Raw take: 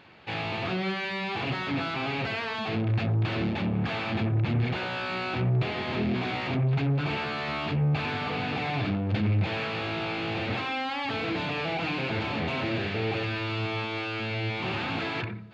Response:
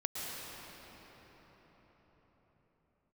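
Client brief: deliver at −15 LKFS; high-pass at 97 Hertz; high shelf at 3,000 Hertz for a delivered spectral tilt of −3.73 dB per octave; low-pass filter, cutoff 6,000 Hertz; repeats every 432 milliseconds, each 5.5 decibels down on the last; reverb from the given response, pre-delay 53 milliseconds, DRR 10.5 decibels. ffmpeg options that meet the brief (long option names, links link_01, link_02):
-filter_complex "[0:a]highpass=97,lowpass=6000,highshelf=frequency=3000:gain=7,aecho=1:1:432|864|1296|1728|2160|2592|3024:0.531|0.281|0.149|0.079|0.0419|0.0222|0.0118,asplit=2[link_01][link_02];[1:a]atrim=start_sample=2205,adelay=53[link_03];[link_02][link_03]afir=irnorm=-1:irlink=0,volume=-14.5dB[link_04];[link_01][link_04]amix=inputs=2:normalize=0,volume=11.5dB"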